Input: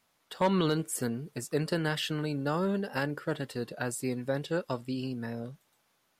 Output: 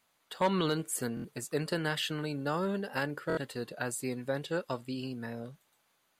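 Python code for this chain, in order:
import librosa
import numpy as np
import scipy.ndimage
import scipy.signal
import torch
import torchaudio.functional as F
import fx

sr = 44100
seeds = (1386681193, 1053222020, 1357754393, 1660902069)

y = fx.low_shelf(x, sr, hz=450.0, db=-4.5)
y = fx.notch(y, sr, hz=5400.0, q=9.2)
y = fx.buffer_glitch(y, sr, at_s=(1.15, 3.28), block=1024, repeats=3)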